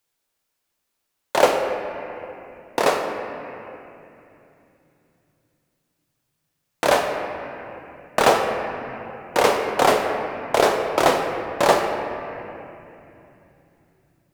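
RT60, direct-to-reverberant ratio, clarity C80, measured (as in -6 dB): 2.9 s, 2.0 dB, 5.0 dB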